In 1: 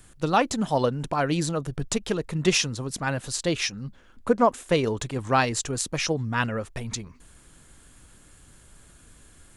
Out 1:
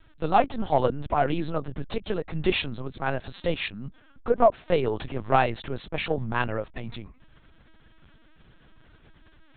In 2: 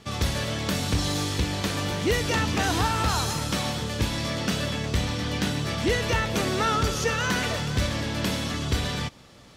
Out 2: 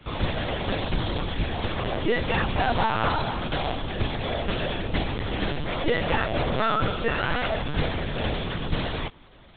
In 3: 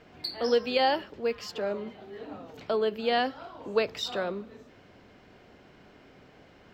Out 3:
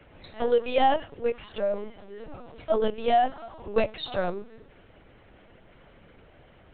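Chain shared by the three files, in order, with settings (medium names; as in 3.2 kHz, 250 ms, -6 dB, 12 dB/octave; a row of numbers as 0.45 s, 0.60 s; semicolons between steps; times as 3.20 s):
dynamic bell 690 Hz, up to +7 dB, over -42 dBFS, Q 2.6; in parallel at -9.5 dB: saturation -18.5 dBFS; on the sum: LPC vocoder at 8 kHz pitch kept; normalise loudness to -27 LUFS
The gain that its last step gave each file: -3.5 dB, -2.5 dB, -1.5 dB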